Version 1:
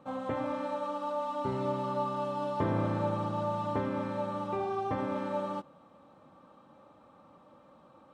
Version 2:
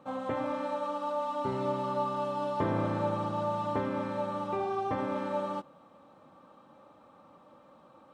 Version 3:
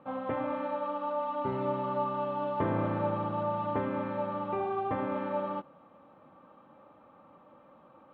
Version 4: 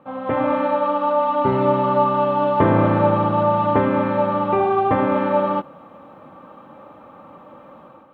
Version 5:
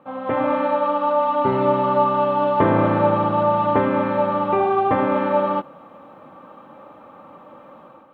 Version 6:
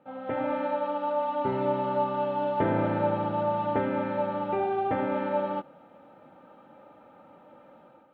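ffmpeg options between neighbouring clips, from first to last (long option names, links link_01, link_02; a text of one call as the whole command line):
ffmpeg -i in.wav -af "lowshelf=frequency=170:gain=-5,volume=1.5dB" out.wav
ffmpeg -i in.wav -af "lowpass=frequency=3000:width=0.5412,lowpass=frequency=3000:width=1.3066" out.wav
ffmpeg -i in.wav -af "dynaudnorm=framelen=120:gausssize=5:maxgain=9dB,volume=5dB" out.wav
ffmpeg -i in.wav -af "lowshelf=frequency=140:gain=-6.5" out.wav
ffmpeg -i in.wav -af "asuperstop=centerf=1100:order=8:qfactor=5.8,volume=-8.5dB" out.wav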